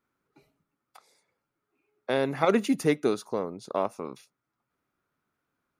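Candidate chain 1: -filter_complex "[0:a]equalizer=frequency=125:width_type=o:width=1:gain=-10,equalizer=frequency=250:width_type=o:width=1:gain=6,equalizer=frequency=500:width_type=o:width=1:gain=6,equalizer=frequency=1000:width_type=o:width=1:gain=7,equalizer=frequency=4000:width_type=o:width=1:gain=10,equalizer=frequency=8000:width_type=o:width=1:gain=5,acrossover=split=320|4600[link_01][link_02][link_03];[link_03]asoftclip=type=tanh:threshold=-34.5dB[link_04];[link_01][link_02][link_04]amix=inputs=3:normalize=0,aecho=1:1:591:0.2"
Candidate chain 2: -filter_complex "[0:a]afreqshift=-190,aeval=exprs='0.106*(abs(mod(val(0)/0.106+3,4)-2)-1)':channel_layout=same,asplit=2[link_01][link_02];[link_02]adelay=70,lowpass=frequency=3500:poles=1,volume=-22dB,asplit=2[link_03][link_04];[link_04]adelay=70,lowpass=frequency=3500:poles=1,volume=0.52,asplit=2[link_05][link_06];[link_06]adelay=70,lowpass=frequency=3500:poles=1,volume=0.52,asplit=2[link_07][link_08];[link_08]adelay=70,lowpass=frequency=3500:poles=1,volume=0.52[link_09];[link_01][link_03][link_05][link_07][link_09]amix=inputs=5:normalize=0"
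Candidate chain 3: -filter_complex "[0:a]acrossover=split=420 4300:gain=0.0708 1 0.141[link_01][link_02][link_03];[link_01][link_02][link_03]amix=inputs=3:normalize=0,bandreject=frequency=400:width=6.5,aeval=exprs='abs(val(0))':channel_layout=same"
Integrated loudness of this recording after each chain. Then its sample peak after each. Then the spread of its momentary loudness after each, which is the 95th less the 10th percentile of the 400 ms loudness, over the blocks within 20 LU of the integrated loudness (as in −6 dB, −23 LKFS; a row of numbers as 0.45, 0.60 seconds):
−21.0, −31.0, −36.0 LKFS; −4.0, −18.5, −12.5 dBFS; 19, 13, 14 LU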